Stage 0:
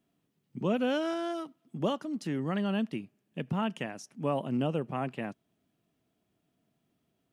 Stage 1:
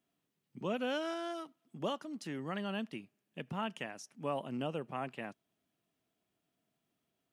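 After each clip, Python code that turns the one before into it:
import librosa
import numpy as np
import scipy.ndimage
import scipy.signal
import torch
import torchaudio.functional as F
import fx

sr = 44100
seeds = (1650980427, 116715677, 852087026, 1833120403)

y = fx.low_shelf(x, sr, hz=440.0, db=-8.5)
y = y * librosa.db_to_amplitude(-2.5)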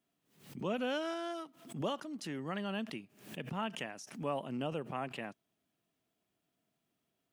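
y = fx.pre_swell(x, sr, db_per_s=110.0)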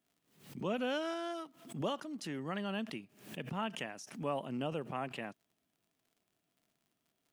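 y = fx.dmg_crackle(x, sr, seeds[0], per_s=78.0, level_db=-60.0)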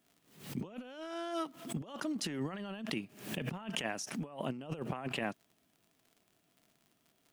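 y = fx.over_compress(x, sr, threshold_db=-42.0, ratio=-0.5)
y = y * librosa.db_to_amplitude(4.0)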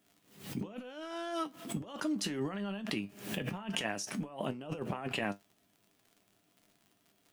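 y = fx.comb_fb(x, sr, f0_hz=100.0, decay_s=0.16, harmonics='all', damping=0.0, mix_pct=70)
y = y * librosa.db_to_amplitude(6.5)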